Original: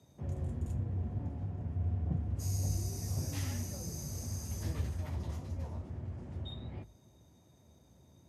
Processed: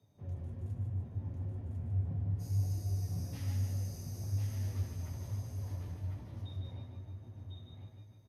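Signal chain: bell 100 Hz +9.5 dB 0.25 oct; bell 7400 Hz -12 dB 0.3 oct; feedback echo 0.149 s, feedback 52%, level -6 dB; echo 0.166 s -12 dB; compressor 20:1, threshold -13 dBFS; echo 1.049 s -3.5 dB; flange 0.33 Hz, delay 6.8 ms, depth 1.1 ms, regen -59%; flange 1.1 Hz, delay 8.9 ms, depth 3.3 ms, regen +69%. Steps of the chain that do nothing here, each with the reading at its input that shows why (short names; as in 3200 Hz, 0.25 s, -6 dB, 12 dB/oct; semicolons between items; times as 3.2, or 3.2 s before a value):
compressor, threshold -13 dBFS: input peak -17.5 dBFS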